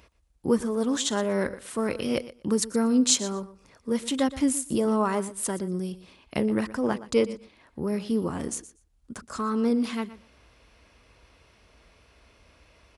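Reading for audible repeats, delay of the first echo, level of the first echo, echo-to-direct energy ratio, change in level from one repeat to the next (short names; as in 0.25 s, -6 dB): 2, 0.12 s, -16.0 dB, -16.0 dB, -16.5 dB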